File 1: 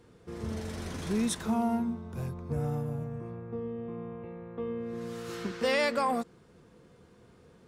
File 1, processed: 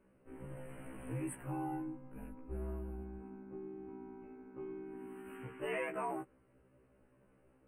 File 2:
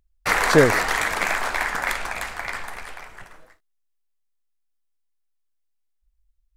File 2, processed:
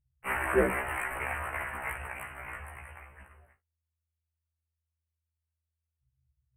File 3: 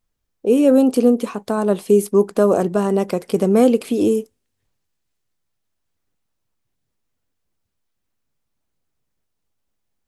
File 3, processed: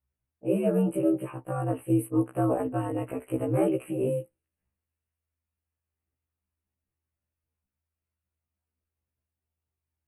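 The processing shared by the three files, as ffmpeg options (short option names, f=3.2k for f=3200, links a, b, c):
-af "aeval=exprs='val(0)*sin(2*PI*81*n/s)':c=same,asuperstop=centerf=5000:order=20:qfactor=0.97,afftfilt=real='re*1.73*eq(mod(b,3),0)':imag='im*1.73*eq(mod(b,3),0)':win_size=2048:overlap=0.75,volume=-5.5dB"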